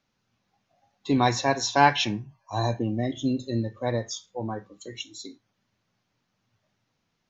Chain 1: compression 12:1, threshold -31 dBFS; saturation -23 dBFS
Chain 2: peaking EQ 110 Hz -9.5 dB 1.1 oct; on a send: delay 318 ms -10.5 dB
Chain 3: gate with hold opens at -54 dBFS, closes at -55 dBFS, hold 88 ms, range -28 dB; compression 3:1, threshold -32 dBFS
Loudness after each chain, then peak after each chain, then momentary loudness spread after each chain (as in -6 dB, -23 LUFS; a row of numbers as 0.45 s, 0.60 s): -38.0 LUFS, -26.5 LUFS, -35.5 LUFS; -23.5 dBFS, -6.0 dBFS, -17.0 dBFS; 7 LU, 18 LU, 10 LU